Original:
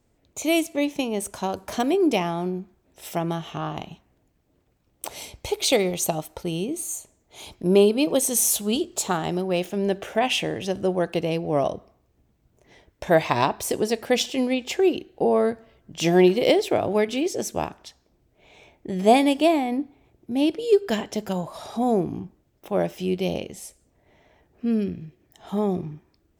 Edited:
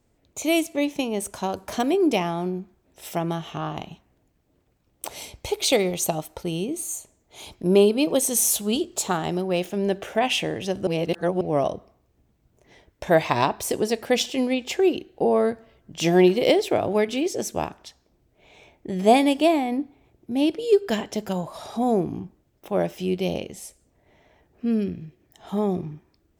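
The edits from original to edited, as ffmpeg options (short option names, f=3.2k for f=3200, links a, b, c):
-filter_complex "[0:a]asplit=3[a][b][c];[a]atrim=end=10.872[d];[b]atrim=start=10.868:end=11.412,asetpts=PTS-STARTPTS,areverse[e];[c]atrim=start=11.408[f];[d][e]acrossfade=d=0.004:c1=hsin:c2=hsin[g];[g][f]acrossfade=d=0.004:c1=hsin:c2=hsin"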